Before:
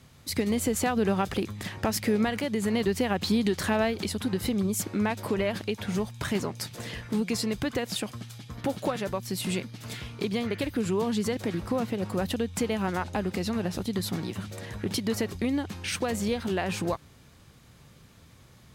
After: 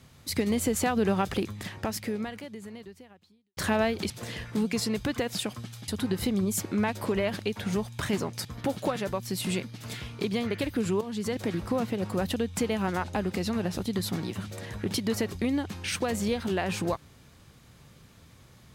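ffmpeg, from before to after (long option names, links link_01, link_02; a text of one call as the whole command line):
ffmpeg -i in.wav -filter_complex "[0:a]asplit=6[link_01][link_02][link_03][link_04][link_05][link_06];[link_01]atrim=end=3.57,asetpts=PTS-STARTPTS,afade=type=out:start_time=1.42:duration=2.15:curve=qua[link_07];[link_02]atrim=start=3.57:end=4.102,asetpts=PTS-STARTPTS,afade=type=in:duration=0.004:curve=hsin[link_08];[link_03]atrim=start=6.668:end=8.452[link_09];[link_04]atrim=start=4.098:end=6.672[link_10];[link_05]atrim=start=8.448:end=11.01,asetpts=PTS-STARTPTS,afade=type=out:start_time=2.558:duration=0.004:curve=hsin:silence=0.237137[link_11];[link_06]atrim=start=11.01,asetpts=PTS-STARTPTS,afade=type=in:duration=0.38:silence=0.237137[link_12];[link_07][link_08]concat=n=2:v=0:a=1[link_13];[link_13][link_09]acrossfade=duration=0.004:curve1=hsin:curve2=hsin[link_14];[link_14][link_10]acrossfade=duration=0.004:curve1=hsin:curve2=hsin[link_15];[link_11][link_12]concat=n=2:v=0:a=1[link_16];[link_15][link_16]acrossfade=duration=0.004:curve1=hsin:curve2=hsin" out.wav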